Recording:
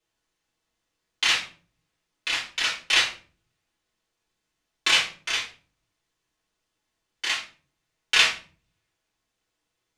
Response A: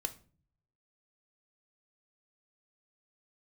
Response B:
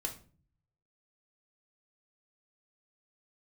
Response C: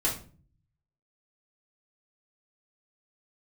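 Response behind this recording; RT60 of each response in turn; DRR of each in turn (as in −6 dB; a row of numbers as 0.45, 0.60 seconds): C; 0.40, 0.40, 0.40 seconds; 7.5, 1.5, −6.0 decibels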